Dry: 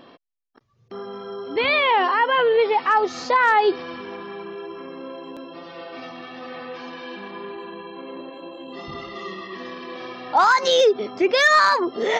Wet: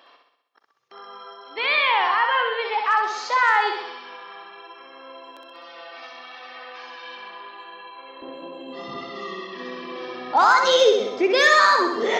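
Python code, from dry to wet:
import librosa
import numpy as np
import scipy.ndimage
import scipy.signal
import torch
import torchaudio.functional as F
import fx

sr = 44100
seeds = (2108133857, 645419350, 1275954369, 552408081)

y = fx.highpass(x, sr, hz=fx.steps((0.0, 840.0), (8.22, 190.0)), slope=12)
y = fx.echo_feedback(y, sr, ms=64, feedback_pct=58, wet_db=-5.0)
y = F.gain(torch.from_numpy(y), -1.0).numpy()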